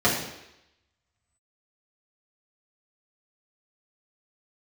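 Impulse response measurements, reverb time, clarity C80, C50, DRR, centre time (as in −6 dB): 0.85 s, 7.5 dB, 4.5 dB, −7.5 dB, 39 ms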